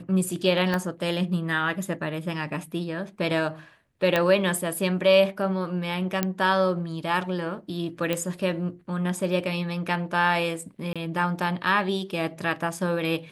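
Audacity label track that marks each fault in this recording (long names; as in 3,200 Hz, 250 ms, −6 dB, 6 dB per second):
0.740000	0.740000	click −13 dBFS
4.160000	4.160000	click −9 dBFS
6.230000	6.230000	click −9 dBFS
8.130000	8.130000	click −12 dBFS
10.930000	10.960000	drop-out 26 ms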